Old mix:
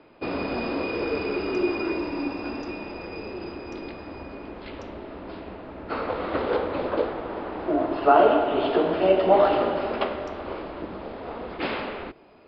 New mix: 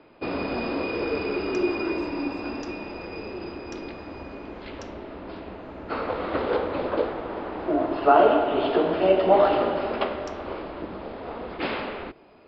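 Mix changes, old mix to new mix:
speech: remove low-pass filter 3,800 Hz 12 dB per octave
second sound +9.0 dB

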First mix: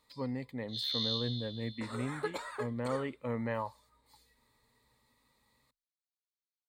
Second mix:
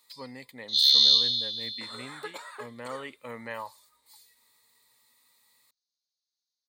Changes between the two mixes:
first sound: add parametric band 5,200 Hz +10.5 dB 1.6 octaves
second sound: add high-shelf EQ 2,900 Hz −11.5 dB
master: add spectral tilt +4 dB per octave

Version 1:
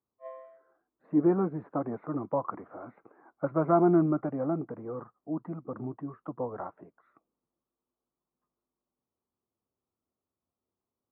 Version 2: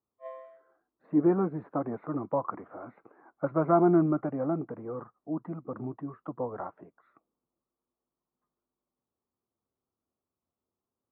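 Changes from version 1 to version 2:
background: remove high-frequency loss of the air 170 metres
master: remove high-frequency loss of the air 160 metres

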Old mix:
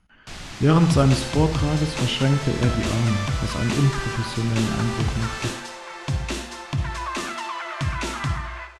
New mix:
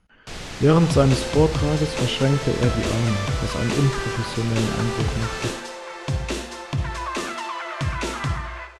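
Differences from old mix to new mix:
speech: send −6.5 dB
first sound: send on
master: add parametric band 470 Hz +8 dB 0.56 octaves

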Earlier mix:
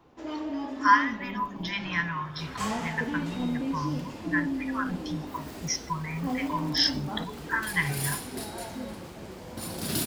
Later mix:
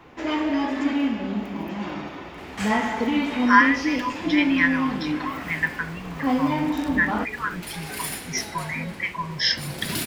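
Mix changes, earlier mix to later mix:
speech: entry +2.65 s
first sound +9.0 dB
master: add parametric band 2,100 Hz +9.5 dB 1.1 octaves

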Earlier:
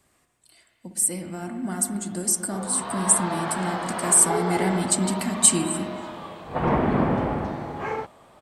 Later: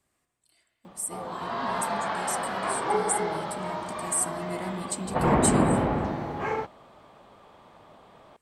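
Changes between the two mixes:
speech −10.5 dB
background: entry −1.40 s

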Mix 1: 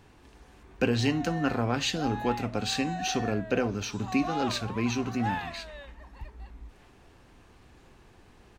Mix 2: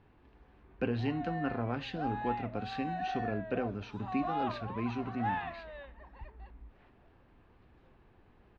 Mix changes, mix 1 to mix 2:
speech −6.0 dB
master: add high-frequency loss of the air 360 metres

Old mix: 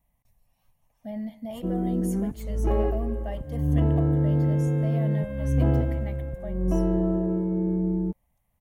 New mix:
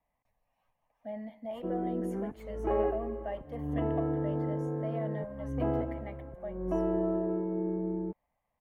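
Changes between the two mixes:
second sound: add transistor ladder low-pass 1,300 Hz, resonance 65%
master: add three-way crossover with the lows and the highs turned down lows −15 dB, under 310 Hz, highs −18 dB, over 2,600 Hz

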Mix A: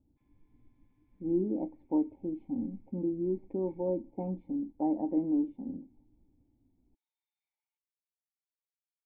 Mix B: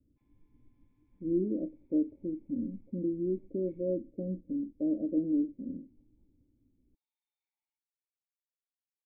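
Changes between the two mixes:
speech: add Butterworth low-pass 620 Hz 96 dB per octave
master: add parametric band 1,700 Hz −3 dB 1.4 octaves

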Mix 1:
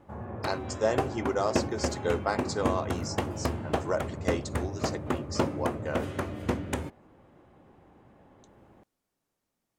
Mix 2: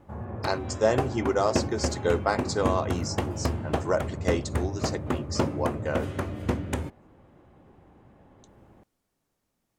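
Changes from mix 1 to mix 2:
speech +3.5 dB
master: add low-shelf EQ 150 Hz +6 dB

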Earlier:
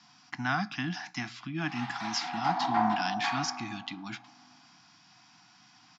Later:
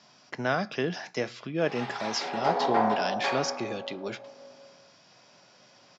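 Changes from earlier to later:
background: send on
master: remove Chebyshev band-stop filter 320–720 Hz, order 4

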